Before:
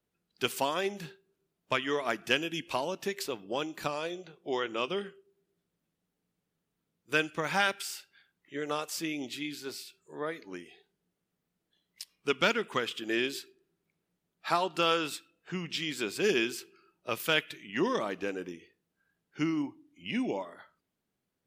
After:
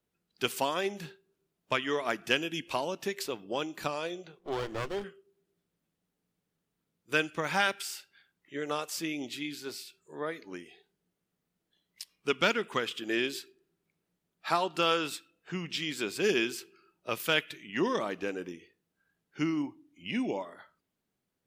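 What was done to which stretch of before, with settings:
4.39–5.04 running maximum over 17 samples

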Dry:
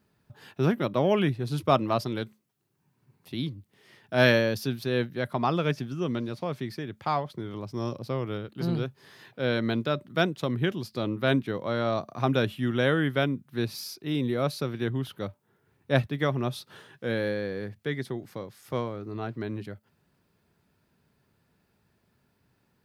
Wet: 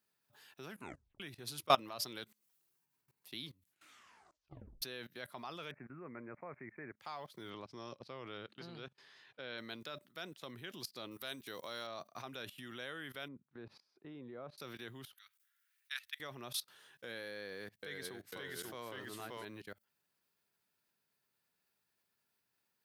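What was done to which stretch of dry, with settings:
0.69 tape stop 0.51 s
3.5 tape stop 1.32 s
5.71–7 steep low-pass 2300 Hz 96 dB/oct
7.5–9.58 LPF 4200 Hz
11.11–11.87 tone controls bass -2 dB, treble +12 dB
13.28–14.58 LPF 1100 Hz
15.14–16.2 inverse Chebyshev band-stop 160–400 Hz, stop band 80 dB
17.33–19.45 echoes that change speed 0.497 s, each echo -1 st, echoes 2
whole clip: low shelf 350 Hz -5 dB; level quantiser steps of 21 dB; tilt +3 dB/oct; gain -2 dB

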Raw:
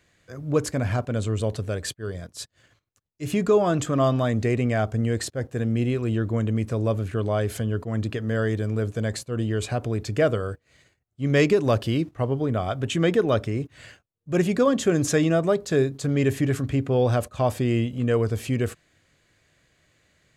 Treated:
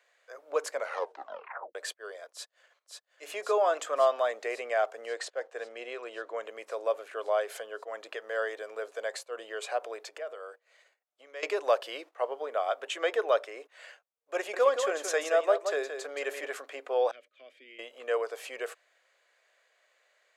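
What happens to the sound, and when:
0.75 tape stop 1.00 s
2.31–3.23 echo throw 0.54 s, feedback 75%, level -4 dB
5.06–6.43 LPF 7500 Hz
10–11.43 compressor 16:1, threshold -30 dBFS
14.36–16.46 echo 0.173 s -7.5 dB
17.11–17.79 vowel filter i
whole clip: steep high-pass 510 Hz 36 dB/oct; high shelf 2800 Hz -8.5 dB

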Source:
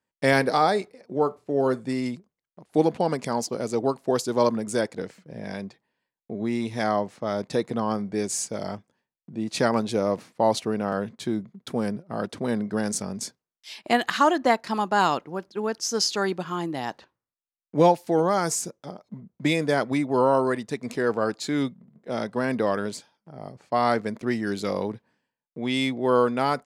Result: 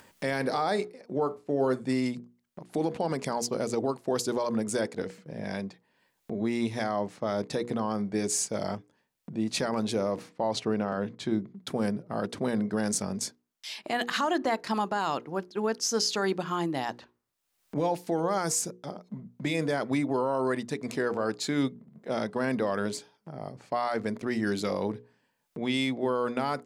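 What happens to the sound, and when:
10.29–11.56 air absorption 60 m
whole clip: upward compressor, threshold -35 dBFS; limiter -17.5 dBFS; notches 60/120/180/240/300/360/420/480 Hz

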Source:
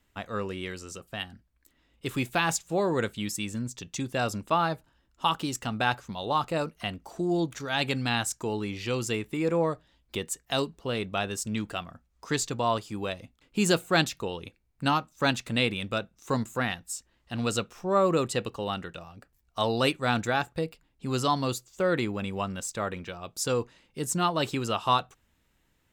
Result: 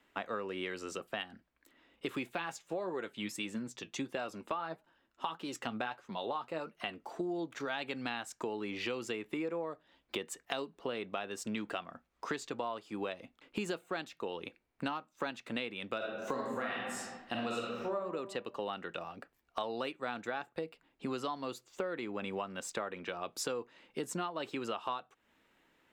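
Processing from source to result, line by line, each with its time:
2.32–7.21 flange 1.6 Hz, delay 4.6 ms, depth 4.7 ms, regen +57%
15.97–17.94 reverb throw, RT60 0.88 s, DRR -4.5 dB
whole clip: three-band isolator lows -20 dB, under 220 Hz, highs -12 dB, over 3600 Hz; compressor 12:1, threshold -39 dBFS; gain +5 dB

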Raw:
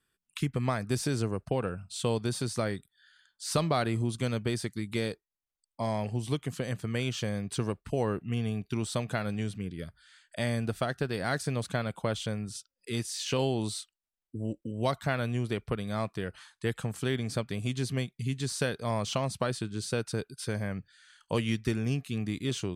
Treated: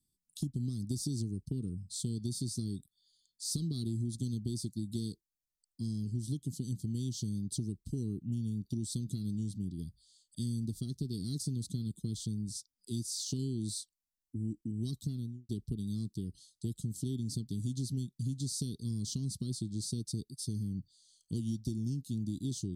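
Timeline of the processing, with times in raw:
15.03–15.49 studio fade out
whole clip: inverse Chebyshev band-stop 520–2500 Hz, stop band 40 dB; dynamic EQ 450 Hz, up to +4 dB, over -53 dBFS, Q 2; compressor, threshold -31 dBFS

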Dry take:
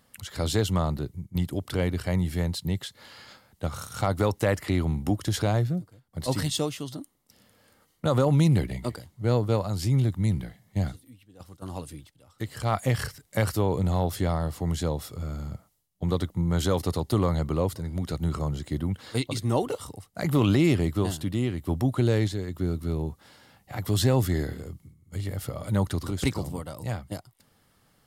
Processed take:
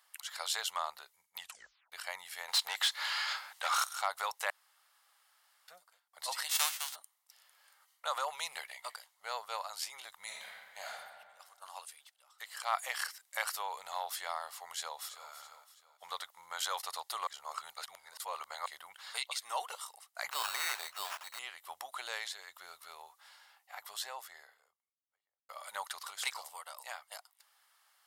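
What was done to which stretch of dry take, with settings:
1.4 tape stop 0.52 s
2.48–3.84 overdrive pedal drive 24 dB, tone 4500 Hz, clips at -15.5 dBFS
4.5–5.68 room tone
6.49–6.94 spectral whitening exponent 0.3
10.23–10.91 reverb throw, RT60 1.6 s, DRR -3.5 dB
14.7–15.31 echo throw 0.33 s, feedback 45%, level -11.5 dB
17.27–18.66 reverse
20.31–21.39 sample-rate reducer 4100 Hz
22.98–25.49 studio fade out
whole clip: inverse Chebyshev high-pass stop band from 320 Hz, stop band 50 dB; gain -2 dB

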